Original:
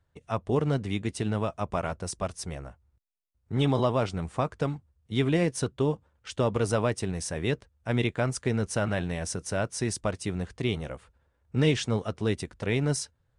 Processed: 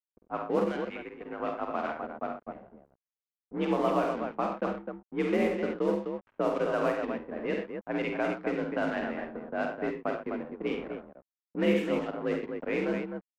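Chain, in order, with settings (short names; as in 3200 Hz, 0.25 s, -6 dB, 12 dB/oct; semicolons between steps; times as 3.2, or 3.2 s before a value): mistuned SSB +51 Hz 160–2700 Hz; 0.65–1.4 tilt +4.5 dB/oct; crossover distortion -42 dBFS; tapped delay 49/69/94/123/255 ms -5.5/-8/-10.5/-11.5/-6 dB; low-pass opened by the level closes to 480 Hz, open at -21 dBFS; gain -2 dB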